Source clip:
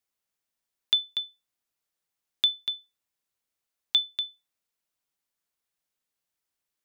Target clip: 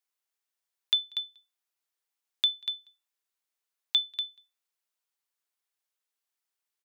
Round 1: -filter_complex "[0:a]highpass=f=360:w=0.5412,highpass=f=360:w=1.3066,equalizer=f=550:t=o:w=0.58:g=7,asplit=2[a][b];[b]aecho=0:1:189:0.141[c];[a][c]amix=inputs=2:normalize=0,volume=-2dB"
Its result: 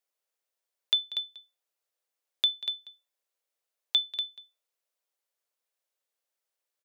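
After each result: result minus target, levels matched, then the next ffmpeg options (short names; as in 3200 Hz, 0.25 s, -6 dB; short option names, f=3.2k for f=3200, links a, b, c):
500 Hz band +8.0 dB; echo-to-direct +11 dB
-filter_complex "[0:a]highpass=f=360:w=0.5412,highpass=f=360:w=1.3066,equalizer=f=550:t=o:w=0.58:g=-5,asplit=2[a][b];[b]aecho=0:1:189:0.141[c];[a][c]amix=inputs=2:normalize=0,volume=-2dB"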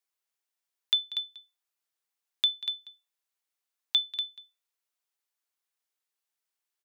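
echo-to-direct +11 dB
-filter_complex "[0:a]highpass=f=360:w=0.5412,highpass=f=360:w=1.3066,equalizer=f=550:t=o:w=0.58:g=-5,asplit=2[a][b];[b]aecho=0:1:189:0.0398[c];[a][c]amix=inputs=2:normalize=0,volume=-2dB"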